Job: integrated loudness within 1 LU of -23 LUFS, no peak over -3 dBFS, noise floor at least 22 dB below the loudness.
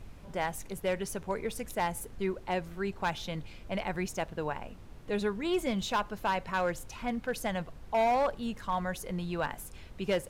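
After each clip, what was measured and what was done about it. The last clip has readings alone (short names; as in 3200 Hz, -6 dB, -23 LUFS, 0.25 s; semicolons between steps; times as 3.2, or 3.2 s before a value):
clipped 0.9%; flat tops at -22.5 dBFS; noise floor -49 dBFS; noise floor target -56 dBFS; loudness -33.5 LUFS; peak -22.5 dBFS; loudness target -23.0 LUFS
-> clip repair -22.5 dBFS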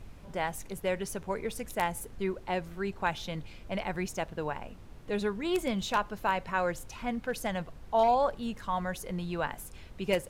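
clipped 0.0%; noise floor -49 dBFS; noise floor target -55 dBFS
-> noise print and reduce 6 dB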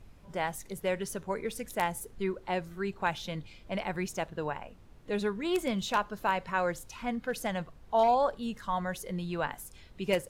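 noise floor -54 dBFS; noise floor target -55 dBFS
-> noise print and reduce 6 dB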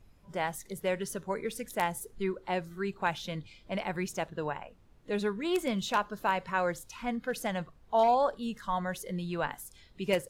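noise floor -59 dBFS; loudness -33.0 LUFS; peak -13.5 dBFS; loudness target -23.0 LUFS
-> gain +10 dB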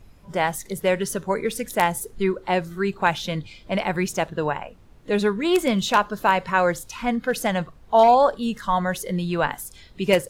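loudness -23.0 LUFS; peak -3.5 dBFS; noise floor -49 dBFS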